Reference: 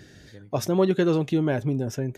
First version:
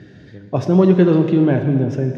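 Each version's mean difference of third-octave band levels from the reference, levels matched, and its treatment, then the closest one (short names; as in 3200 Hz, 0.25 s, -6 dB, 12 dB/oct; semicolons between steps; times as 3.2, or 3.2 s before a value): 5.0 dB: BPF 130–3200 Hz; low shelf 290 Hz +10.5 dB; plate-style reverb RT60 2 s, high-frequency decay 1×, DRR 5.5 dB; gain +3 dB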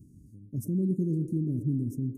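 11.0 dB: elliptic band-stop 260–9100 Hz, stop band 50 dB; high shelf 9300 Hz -6 dB; on a send: band-limited delay 0.114 s, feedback 65%, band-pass 520 Hz, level -8.5 dB; on the sum: gain -1 dB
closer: first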